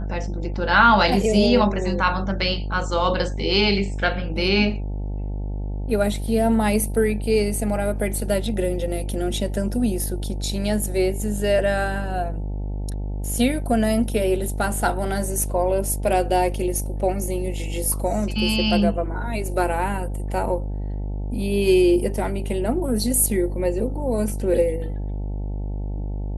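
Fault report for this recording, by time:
buzz 50 Hz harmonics 18 -27 dBFS

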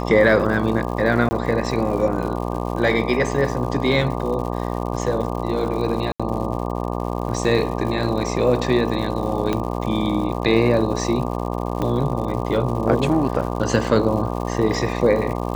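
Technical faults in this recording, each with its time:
buzz 60 Hz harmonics 20 -25 dBFS
crackle 160/s -30 dBFS
1.29–1.31 gap 20 ms
6.12–6.2 gap 76 ms
9.53 pop -9 dBFS
11.82 pop -12 dBFS

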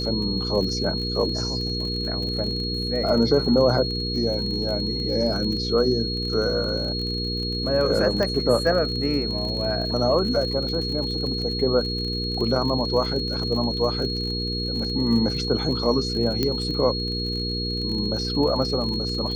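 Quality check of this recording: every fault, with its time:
crackle 41/s -30 dBFS
hum 60 Hz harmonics 8 -29 dBFS
tone 4300 Hz -28 dBFS
8.23 pop -13 dBFS
16.43 pop -9 dBFS

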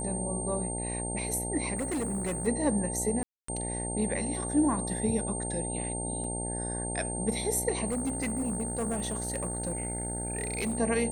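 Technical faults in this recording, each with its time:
buzz 60 Hz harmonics 15 -36 dBFS
tone 8700 Hz -35 dBFS
1.75–2.48 clipped -28 dBFS
3.23–3.48 gap 0.254 s
6.24 gap 3.5 ms
7.86–10.79 clipped -27 dBFS

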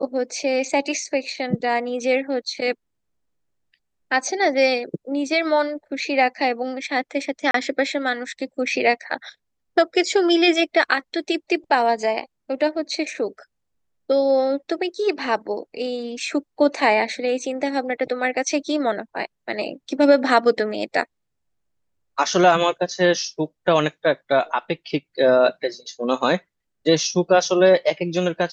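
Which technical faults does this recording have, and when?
7.51–7.54 gap 33 ms

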